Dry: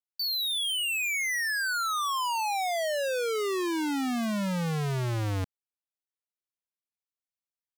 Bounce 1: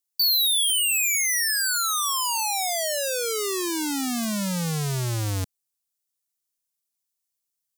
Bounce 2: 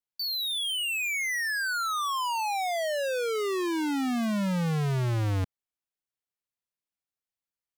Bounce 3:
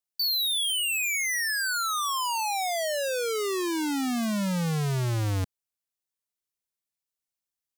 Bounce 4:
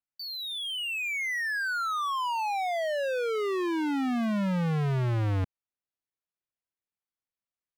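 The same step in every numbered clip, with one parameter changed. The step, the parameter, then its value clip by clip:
tone controls, treble: +15, -2, +6, -13 dB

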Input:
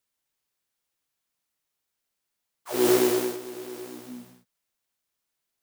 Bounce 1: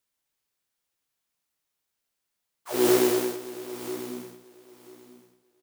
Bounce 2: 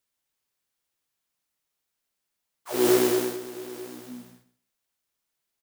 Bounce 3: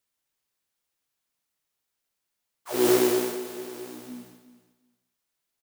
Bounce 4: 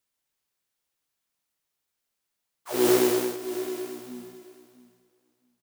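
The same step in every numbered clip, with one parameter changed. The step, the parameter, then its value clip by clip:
feedback echo, time: 0.989, 0.129, 0.361, 0.667 s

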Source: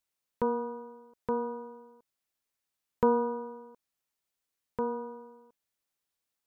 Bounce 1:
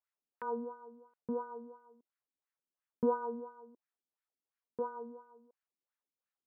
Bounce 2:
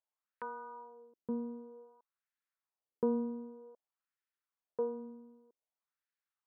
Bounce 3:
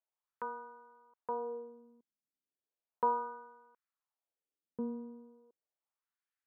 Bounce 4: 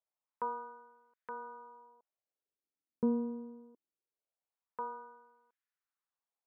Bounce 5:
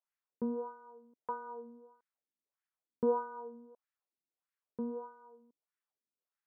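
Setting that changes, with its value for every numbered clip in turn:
wah, rate: 2.9, 0.53, 0.35, 0.23, 1.6 Hz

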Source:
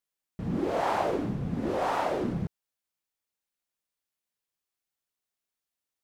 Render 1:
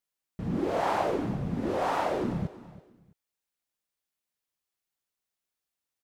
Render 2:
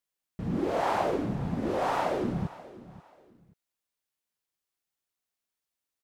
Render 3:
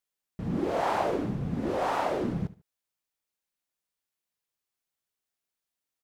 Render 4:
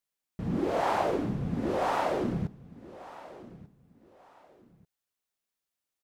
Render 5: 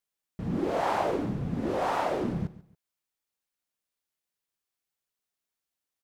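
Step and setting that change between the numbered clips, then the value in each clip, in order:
feedback echo, time: 330, 533, 73, 1190, 140 ms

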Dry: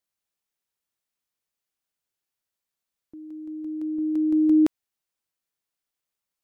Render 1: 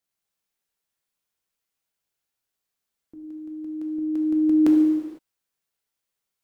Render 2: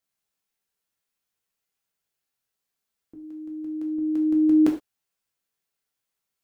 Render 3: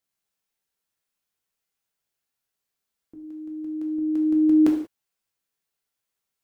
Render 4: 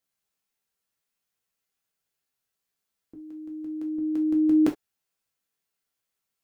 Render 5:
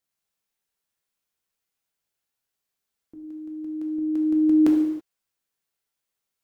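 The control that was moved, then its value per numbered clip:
non-linear reverb, gate: 530, 140, 210, 90, 350 ms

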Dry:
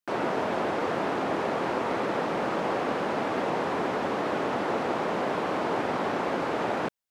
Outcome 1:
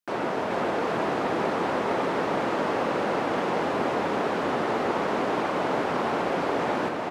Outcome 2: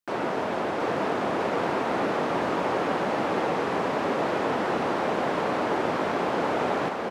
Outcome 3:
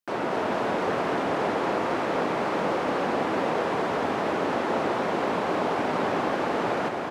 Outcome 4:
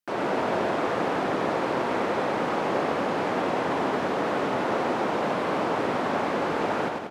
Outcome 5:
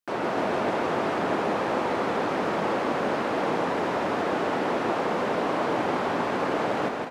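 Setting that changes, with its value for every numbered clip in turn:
bouncing-ball echo, first gap: 0.43, 0.72, 0.24, 0.1, 0.16 s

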